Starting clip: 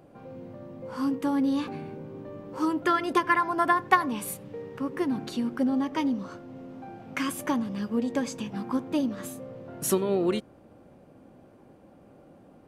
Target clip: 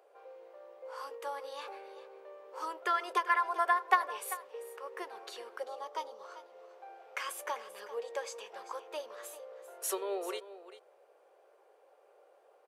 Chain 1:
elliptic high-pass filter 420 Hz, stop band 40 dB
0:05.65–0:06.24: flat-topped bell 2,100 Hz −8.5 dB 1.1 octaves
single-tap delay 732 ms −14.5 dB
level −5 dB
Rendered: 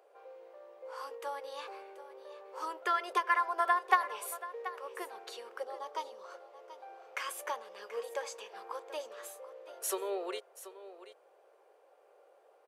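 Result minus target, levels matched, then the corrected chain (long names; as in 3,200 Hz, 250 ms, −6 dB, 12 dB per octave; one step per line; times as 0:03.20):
echo 340 ms late
elliptic high-pass filter 420 Hz, stop band 40 dB
0:05.65–0:06.24: flat-topped bell 2,100 Hz −8.5 dB 1.1 octaves
single-tap delay 392 ms −14.5 dB
level −5 dB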